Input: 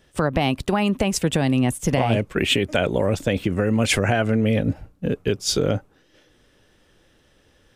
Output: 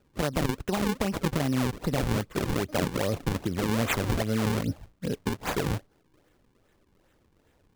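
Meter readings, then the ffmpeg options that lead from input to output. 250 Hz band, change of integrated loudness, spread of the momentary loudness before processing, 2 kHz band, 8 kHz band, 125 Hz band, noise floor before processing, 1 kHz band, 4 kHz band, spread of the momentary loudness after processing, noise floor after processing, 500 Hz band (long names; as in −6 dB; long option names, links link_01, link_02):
−7.0 dB, −7.5 dB, 5 LU, −8.0 dB, −8.5 dB, −6.5 dB, −60 dBFS, −6.0 dB, −10.5 dB, 5 LU, −67 dBFS, −8.5 dB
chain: -af "acrusher=samples=39:mix=1:aa=0.000001:lfo=1:lforange=62.4:lforate=2.5,volume=-7dB"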